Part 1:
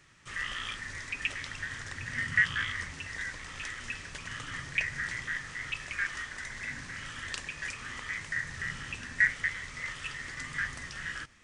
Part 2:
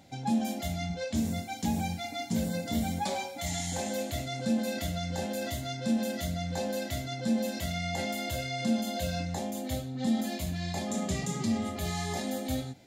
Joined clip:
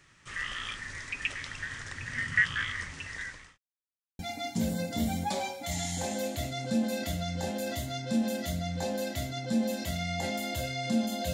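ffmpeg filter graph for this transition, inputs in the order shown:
-filter_complex "[0:a]apad=whole_dur=11.33,atrim=end=11.33,asplit=2[s0][s1];[s0]atrim=end=3.58,asetpts=PTS-STARTPTS,afade=t=out:st=3.01:d=0.57:c=qsin[s2];[s1]atrim=start=3.58:end=4.19,asetpts=PTS-STARTPTS,volume=0[s3];[1:a]atrim=start=1.94:end=9.08,asetpts=PTS-STARTPTS,afade=t=in:d=0.004:c=hsin[s4];[s2][s3][s4]concat=n=3:v=0:a=1"

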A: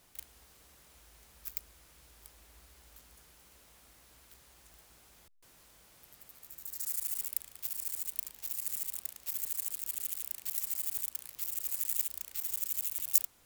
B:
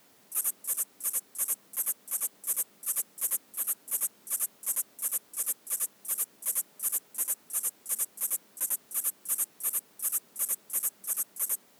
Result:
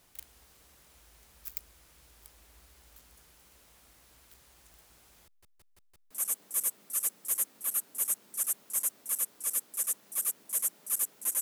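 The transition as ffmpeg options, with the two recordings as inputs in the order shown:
-filter_complex "[0:a]apad=whole_dur=11.41,atrim=end=11.41,asplit=5[s0][s1][s2][s3][s4];[s0]atrim=end=5.432[s5];[s1]atrim=start=5.258:end=5.432[s6];[s2]atrim=start=5.258:end=5.432[s7];[s3]atrim=start=5.258:end=5.432[s8];[s4]atrim=start=5.258:end=5.432[s9];[1:a]atrim=start=2.038:end=7.34[s10];[s5][s6]acrossfade=d=0.004:c1=hsin:c2=hsin[s11];[s11][s7]acrossfade=d=0.004:c1=hsin:c2=hsin[s12];[s12][s8]acrossfade=d=0.004:c1=hsin:c2=hsin[s13];[s13][s9]acrossfade=d=0.004:c1=hsin:c2=hsin[s14];[s14][s10]acrossfade=d=0.004:c1=hsin:c2=hsin"

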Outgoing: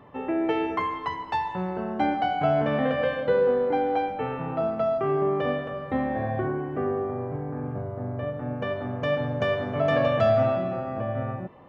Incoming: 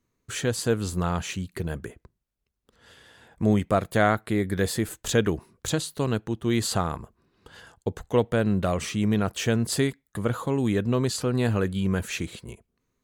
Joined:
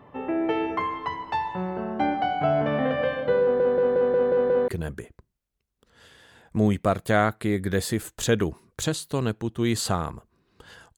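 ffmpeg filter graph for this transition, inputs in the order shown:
-filter_complex "[0:a]apad=whole_dur=10.97,atrim=end=10.97,asplit=7[s0][s1][s2][s3][s4][s5][s6];[s0]atrim=end=3.602[s7];[s1]atrim=start=3.418:end=3.602[s8];[s2]atrim=start=3.418:end=3.602[s9];[s3]atrim=start=3.418:end=3.602[s10];[s4]atrim=start=3.418:end=3.602[s11];[s5]atrim=start=3.418:end=3.602[s12];[s6]atrim=start=3.418:end=3.602[s13];[1:a]atrim=start=1.538:end=7.83[s14];[s7][s8]acrossfade=d=0.004:c1=hsin:c2=hsin[s15];[s15][s9]acrossfade=d=0.004:c1=hsin:c2=hsin[s16];[s16][s10]acrossfade=d=0.004:c1=hsin:c2=hsin[s17];[s17][s11]acrossfade=d=0.004:c1=hsin:c2=hsin[s18];[s18][s12]acrossfade=d=0.004:c1=hsin:c2=hsin[s19];[s19][s13]acrossfade=d=0.004:c1=hsin:c2=hsin[s20];[s20][s14]acrossfade=d=0.004:c1=hsin:c2=hsin"

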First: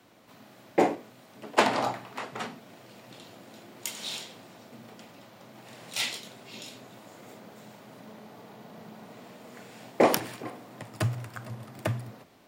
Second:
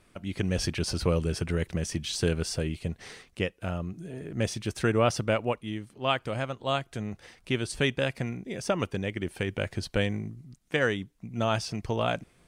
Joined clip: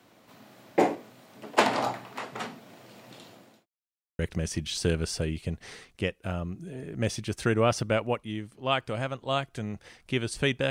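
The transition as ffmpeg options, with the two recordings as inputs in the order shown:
-filter_complex "[0:a]apad=whole_dur=10.7,atrim=end=10.7,asplit=2[s0][s1];[s0]atrim=end=3.66,asetpts=PTS-STARTPTS,afade=t=out:st=3.09:d=0.57:c=qsin[s2];[s1]atrim=start=3.66:end=4.19,asetpts=PTS-STARTPTS,volume=0[s3];[1:a]atrim=start=1.57:end=8.08,asetpts=PTS-STARTPTS,afade=t=in:d=0.004:c=hsin[s4];[s2][s3][s4]concat=n=3:v=0:a=1"

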